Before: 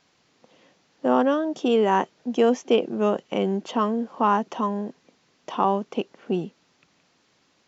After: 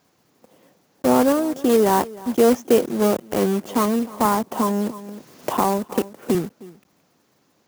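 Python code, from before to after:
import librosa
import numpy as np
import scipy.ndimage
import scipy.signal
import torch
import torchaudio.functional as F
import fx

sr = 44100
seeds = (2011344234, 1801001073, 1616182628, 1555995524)

y = fx.block_float(x, sr, bits=3)
y = scipy.signal.sosfilt(scipy.signal.butter(2, 65.0, 'highpass', fs=sr, output='sos'), y)
y = fx.peak_eq(y, sr, hz=3100.0, db=-9.5, octaves=2.4)
y = y + 10.0 ** (-20.0 / 20.0) * np.pad(y, (int(309 * sr / 1000.0), 0))[:len(y)]
y = fx.band_squash(y, sr, depth_pct=70, at=(4.25, 6.35))
y = y * librosa.db_to_amplitude(4.5)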